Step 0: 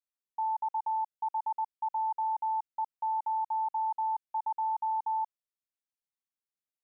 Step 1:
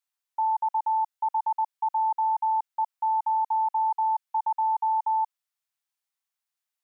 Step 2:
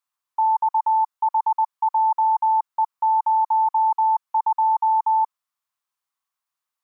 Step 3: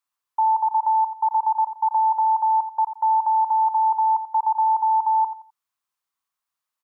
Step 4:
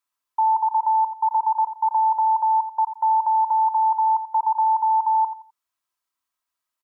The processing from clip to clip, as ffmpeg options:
ffmpeg -i in.wav -af "highpass=frequency=730:width=0.5412,highpass=frequency=730:width=1.3066,volume=7dB" out.wav
ffmpeg -i in.wav -af "equalizer=frequency=1100:width_type=o:width=0.65:gain=11.5" out.wav
ffmpeg -i in.wav -af "aecho=1:1:86|172|258:0.266|0.0718|0.0194" out.wav
ffmpeg -i in.wav -af "aecho=1:1:3.1:0.45" out.wav

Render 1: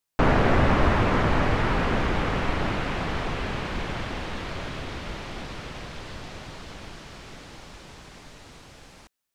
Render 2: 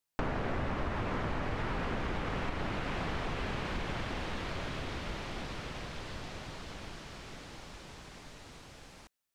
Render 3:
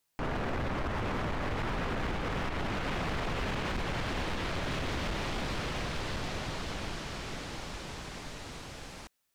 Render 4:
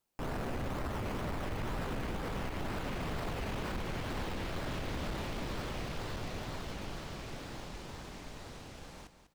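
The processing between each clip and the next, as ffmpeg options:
ffmpeg -i in.wav -af "acompressor=threshold=-27dB:ratio=6,volume=-4dB" out.wav
ffmpeg -i in.wav -af "alimiter=level_in=5.5dB:limit=-24dB:level=0:latency=1:release=86,volume=-5.5dB,asoftclip=type=hard:threshold=-37dB,volume=7.5dB" out.wav
ffmpeg -i in.wav -filter_complex "[0:a]asplit=2[link_01][link_02];[link_02]acrusher=samples=19:mix=1:aa=0.000001:lfo=1:lforange=11.4:lforate=2.1,volume=-4dB[link_03];[link_01][link_03]amix=inputs=2:normalize=0,aecho=1:1:197|394|591:0.282|0.0676|0.0162,volume=-7.5dB" out.wav

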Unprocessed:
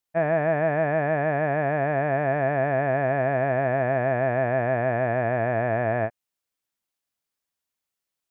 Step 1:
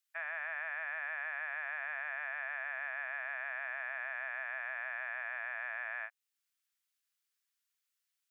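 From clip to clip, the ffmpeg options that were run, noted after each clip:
ffmpeg -i in.wav -af "highpass=frequency=1300:width=0.5412,highpass=frequency=1300:width=1.3066,alimiter=level_in=5dB:limit=-24dB:level=0:latency=1:release=429,volume=-5dB" out.wav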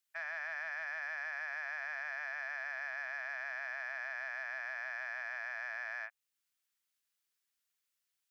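ffmpeg -i in.wav -af "asoftclip=type=tanh:threshold=-30dB" out.wav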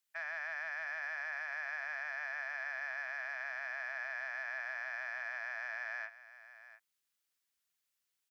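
ffmpeg -i in.wav -af "aecho=1:1:697:0.178" out.wav

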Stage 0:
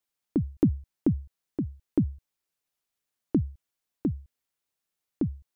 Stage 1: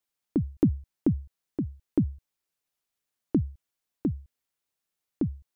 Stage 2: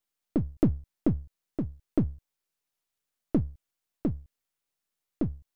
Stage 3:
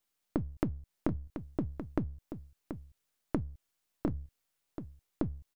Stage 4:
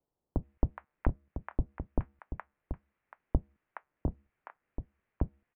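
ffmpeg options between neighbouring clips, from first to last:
ffmpeg -i in.wav -af anull out.wav
ffmpeg -i in.wav -af "aeval=exprs='if(lt(val(0),0),0.447*val(0),val(0))':channel_layout=same,volume=1.5dB" out.wav
ffmpeg -i in.wav -af "acompressor=threshold=-32dB:ratio=10,aecho=1:1:732:0.335,volume=3.5dB" out.wav
ffmpeg -i in.wav -filter_complex "[0:a]highpass=frequency=300:width_type=q:width=0.5412,highpass=frequency=300:width_type=q:width=1.307,lowpass=frequency=2600:width_type=q:width=0.5176,lowpass=frequency=2600:width_type=q:width=0.7071,lowpass=frequency=2600:width_type=q:width=1.932,afreqshift=-350,acrossover=split=870[link_01][link_02];[link_02]adelay=420[link_03];[link_01][link_03]amix=inputs=2:normalize=0,volume=8dB" out.wav

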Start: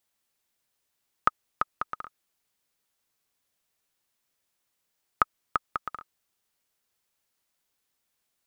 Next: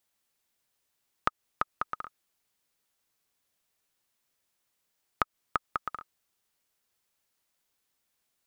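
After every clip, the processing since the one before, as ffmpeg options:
ffmpeg -i in.wav -af "acompressor=threshold=-23dB:ratio=6" out.wav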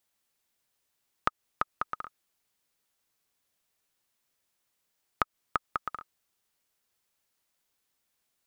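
ffmpeg -i in.wav -af anull out.wav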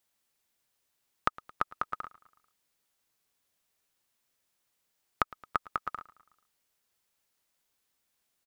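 ffmpeg -i in.wav -af "aecho=1:1:110|220|330|440:0.0891|0.0508|0.029|0.0165" out.wav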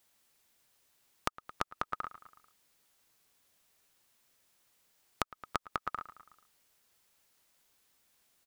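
ffmpeg -i in.wav -af "acompressor=threshold=-37dB:ratio=10,volume=7dB" out.wav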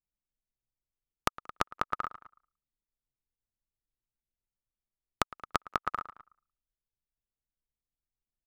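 ffmpeg -i in.wav -filter_complex "[0:a]anlmdn=0.00251,asplit=2[link_01][link_02];[link_02]adelay=180,highpass=300,lowpass=3400,asoftclip=type=hard:threshold=-17dB,volume=-28dB[link_03];[link_01][link_03]amix=inputs=2:normalize=0,volume=4.5dB" out.wav

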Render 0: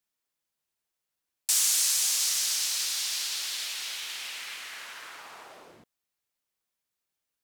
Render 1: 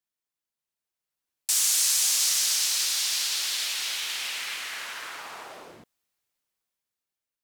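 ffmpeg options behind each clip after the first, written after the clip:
ffmpeg -i in.wav -af "dynaudnorm=framelen=330:gausssize=9:maxgain=12dB,volume=-6dB" out.wav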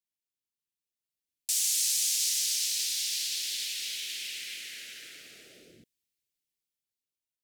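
ffmpeg -i in.wav -af "asuperstop=centerf=970:order=4:qfactor=0.52,volume=-4.5dB" out.wav

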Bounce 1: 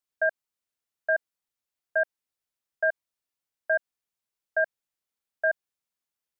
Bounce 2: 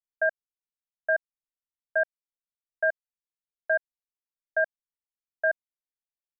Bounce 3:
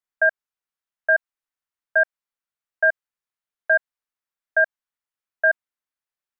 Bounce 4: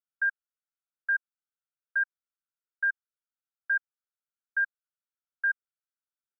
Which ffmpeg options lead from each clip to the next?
ffmpeg -i in.wav -af "anlmdn=0.158" out.wav
ffmpeg -i in.wav -af "equalizer=frequency=1400:width_type=o:width=1.9:gain=9" out.wav
ffmpeg -i in.wav -af "asuperpass=centerf=1400:order=4:qfactor=4.1,volume=-4dB" out.wav

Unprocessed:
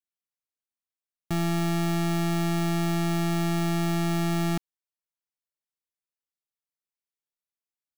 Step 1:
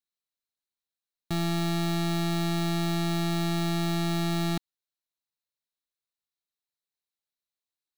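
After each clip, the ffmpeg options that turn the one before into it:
ffmpeg -i in.wav -af "equalizer=frequency=4000:width=5.4:gain=11.5,volume=-2dB" out.wav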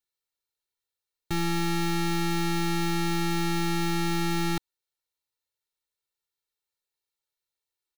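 ffmpeg -i in.wav -af "aecho=1:1:2.2:0.97" out.wav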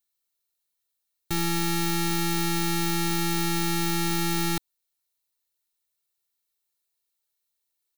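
ffmpeg -i in.wav -af "crystalizer=i=1.5:c=0" out.wav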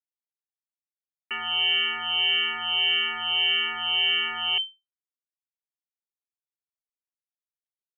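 ffmpeg -i in.wav -filter_complex "[0:a]aeval=exprs='val(0)*gte(abs(val(0)),0.00531)':channel_layout=same,lowpass=frequency=2600:width_type=q:width=0.5098,lowpass=frequency=2600:width_type=q:width=0.6013,lowpass=frequency=2600:width_type=q:width=0.9,lowpass=frequency=2600:width_type=q:width=2.563,afreqshift=-3100,asplit=2[link_01][link_02];[link_02]afreqshift=-1.7[link_03];[link_01][link_03]amix=inputs=2:normalize=1,volume=4dB" out.wav

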